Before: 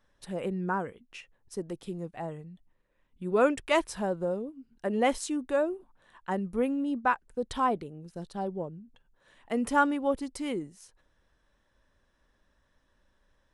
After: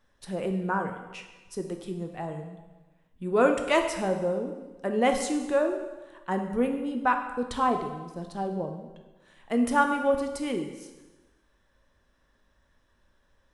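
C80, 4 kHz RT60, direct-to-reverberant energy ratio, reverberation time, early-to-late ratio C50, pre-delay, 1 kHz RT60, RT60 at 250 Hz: 9.0 dB, 1.1 s, 4.5 dB, 1.2 s, 7.0 dB, 5 ms, 1.2 s, 1.2 s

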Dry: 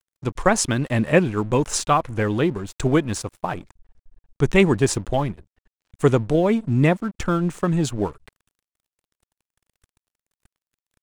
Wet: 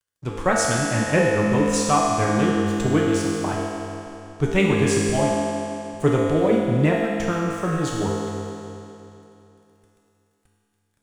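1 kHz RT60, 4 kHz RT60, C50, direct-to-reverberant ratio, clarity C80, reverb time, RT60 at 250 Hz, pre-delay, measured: 2.9 s, 2.8 s, -2.0 dB, -5.0 dB, -0.5 dB, 2.9 s, 2.9 s, 4 ms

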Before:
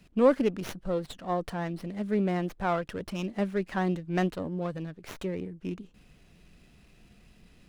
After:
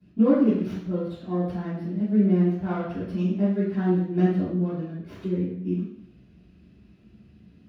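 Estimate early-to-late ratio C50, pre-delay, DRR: 0.5 dB, 3 ms, -13.5 dB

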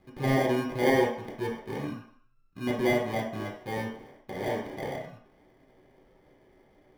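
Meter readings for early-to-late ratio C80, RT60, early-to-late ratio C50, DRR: 8.5 dB, 0.60 s, 4.0 dB, -4.0 dB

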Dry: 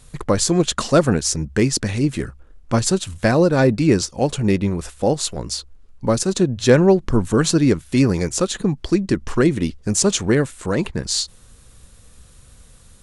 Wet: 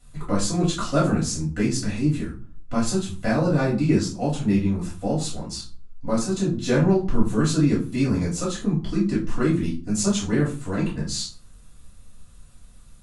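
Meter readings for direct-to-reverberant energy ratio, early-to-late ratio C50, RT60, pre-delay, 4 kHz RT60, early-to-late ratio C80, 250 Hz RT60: -7.5 dB, 8.0 dB, 0.40 s, 3 ms, 0.25 s, 14.0 dB, 0.60 s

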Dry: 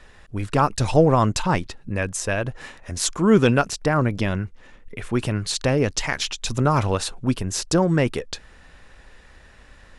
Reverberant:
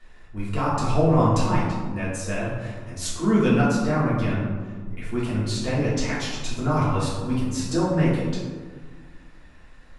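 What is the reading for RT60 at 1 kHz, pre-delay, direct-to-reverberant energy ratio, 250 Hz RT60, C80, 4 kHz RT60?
1.5 s, 3 ms, -8.5 dB, 2.1 s, 3.5 dB, 0.70 s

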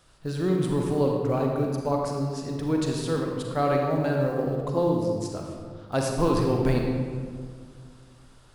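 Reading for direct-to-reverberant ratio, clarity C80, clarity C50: 0.0 dB, 3.0 dB, 1.0 dB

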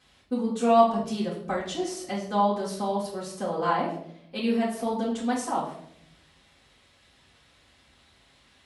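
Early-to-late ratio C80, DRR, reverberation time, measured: 9.5 dB, -7.5 dB, 0.70 s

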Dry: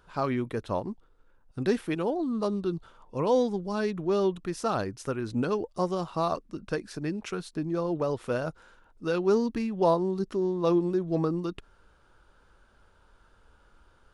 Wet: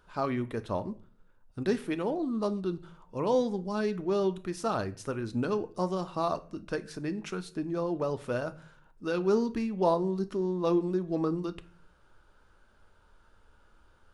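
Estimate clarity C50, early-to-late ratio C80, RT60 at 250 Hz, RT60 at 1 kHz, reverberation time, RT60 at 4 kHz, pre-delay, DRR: 18.5 dB, 22.5 dB, 0.70 s, 0.40 s, 0.45 s, 0.35 s, 3 ms, 10.5 dB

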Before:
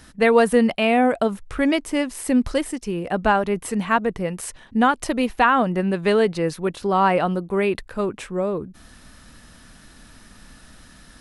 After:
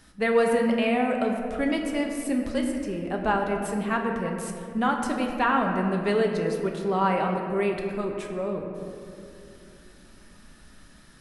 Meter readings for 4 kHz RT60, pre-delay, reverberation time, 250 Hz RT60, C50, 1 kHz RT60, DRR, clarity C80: 1.2 s, 5 ms, 2.7 s, 3.9 s, 4.0 dB, 2.3 s, 1.0 dB, 4.5 dB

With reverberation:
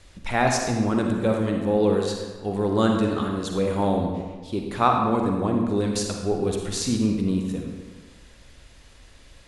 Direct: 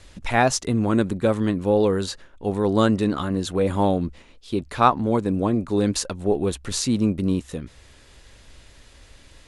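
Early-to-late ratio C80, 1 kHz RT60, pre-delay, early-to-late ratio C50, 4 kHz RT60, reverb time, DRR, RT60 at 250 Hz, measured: 4.5 dB, 1.4 s, 39 ms, 2.5 dB, 1.0 s, 1.4 s, 1.5 dB, 1.4 s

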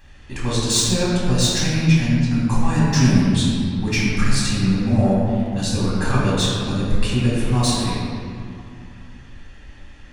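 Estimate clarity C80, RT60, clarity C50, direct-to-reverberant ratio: -1.0 dB, 2.3 s, -2.5 dB, -8.5 dB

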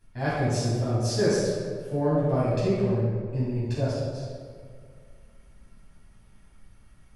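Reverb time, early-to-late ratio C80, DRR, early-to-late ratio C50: 2.0 s, 0.0 dB, -11.0 dB, -3.0 dB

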